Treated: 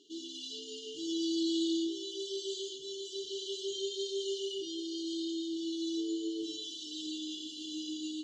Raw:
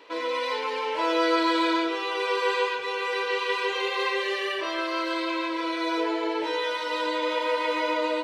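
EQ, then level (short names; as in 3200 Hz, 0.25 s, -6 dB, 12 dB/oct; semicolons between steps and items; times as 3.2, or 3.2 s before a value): brick-wall FIR band-stop 430–2800 Hz; synth low-pass 6900 Hz, resonance Q 11; high shelf 3200 Hz -7 dB; -4.5 dB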